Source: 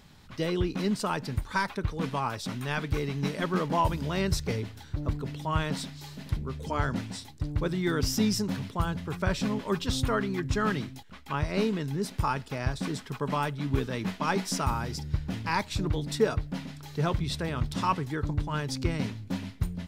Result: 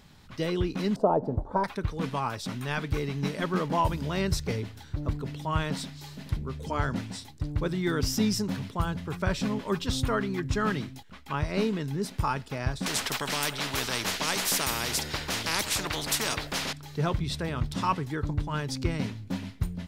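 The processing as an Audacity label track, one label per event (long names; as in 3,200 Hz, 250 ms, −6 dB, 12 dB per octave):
0.960000	1.640000	drawn EQ curve 140 Hz 0 dB, 690 Hz +14 dB, 2,100 Hz −25 dB
12.860000	16.730000	every bin compressed towards the loudest bin 4 to 1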